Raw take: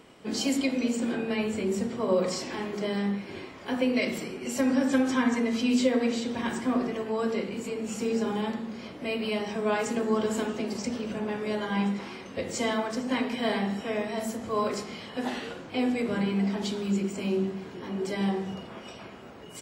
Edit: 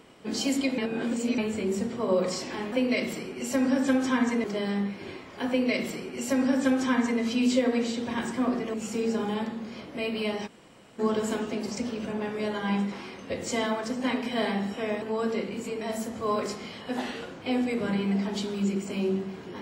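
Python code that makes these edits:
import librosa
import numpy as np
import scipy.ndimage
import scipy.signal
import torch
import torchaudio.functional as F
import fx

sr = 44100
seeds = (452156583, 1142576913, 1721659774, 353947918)

y = fx.edit(x, sr, fx.reverse_span(start_s=0.78, length_s=0.6),
    fx.duplicate(start_s=3.77, length_s=1.72, to_s=2.72),
    fx.move(start_s=7.02, length_s=0.79, to_s=14.09),
    fx.room_tone_fill(start_s=9.54, length_s=0.52, crossfade_s=0.02), tone=tone)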